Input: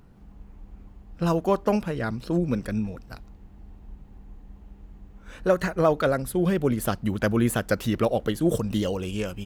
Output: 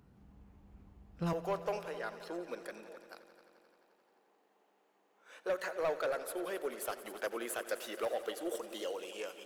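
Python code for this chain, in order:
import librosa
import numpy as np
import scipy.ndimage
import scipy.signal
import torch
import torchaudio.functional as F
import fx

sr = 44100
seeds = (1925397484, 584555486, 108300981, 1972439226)

y = fx.highpass(x, sr, hz=fx.steps((0.0, 55.0), (1.33, 420.0)), slope=24)
y = 10.0 ** (-19.0 / 20.0) * np.tanh(y / 10.0 ** (-19.0 / 20.0))
y = fx.echo_heads(y, sr, ms=87, heads='all three', feedback_pct=66, wet_db=-18.0)
y = y * librosa.db_to_amplitude(-8.5)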